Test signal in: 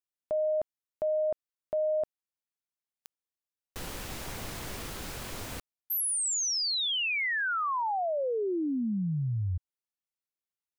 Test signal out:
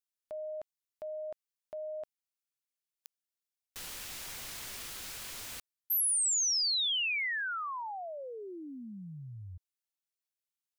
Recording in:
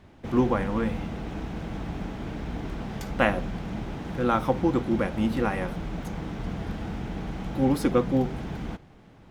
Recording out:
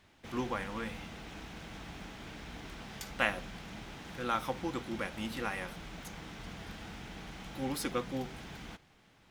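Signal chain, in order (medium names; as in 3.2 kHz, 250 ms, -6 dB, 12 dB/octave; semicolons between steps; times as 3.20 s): tilt shelf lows -8 dB, about 1.2 kHz; trim -7 dB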